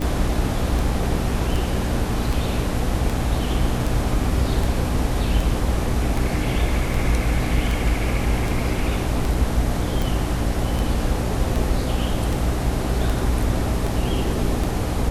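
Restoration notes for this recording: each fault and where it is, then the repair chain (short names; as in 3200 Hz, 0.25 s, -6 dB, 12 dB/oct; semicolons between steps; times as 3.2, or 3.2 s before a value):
hum 60 Hz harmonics 5 -26 dBFS
tick 78 rpm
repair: de-click; de-hum 60 Hz, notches 5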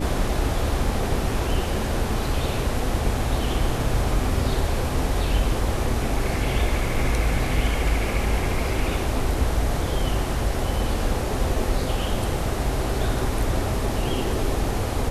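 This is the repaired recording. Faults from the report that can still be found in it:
none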